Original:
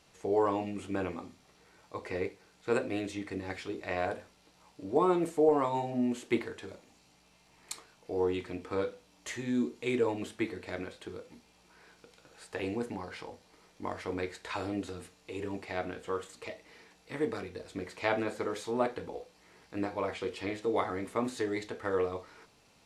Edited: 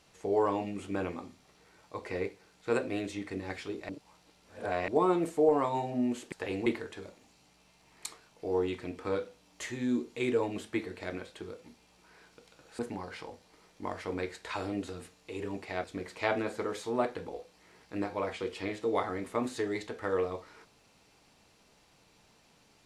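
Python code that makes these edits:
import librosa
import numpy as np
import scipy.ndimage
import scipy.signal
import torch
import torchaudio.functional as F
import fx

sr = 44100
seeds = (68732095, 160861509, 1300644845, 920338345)

y = fx.edit(x, sr, fx.reverse_span(start_s=3.89, length_s=0.99),
    fx.move(start_s=12.45, length_s=0.34, to_s=6.32),
    fx.cut(start_s=15.84, length_s=1.81), tone=tone)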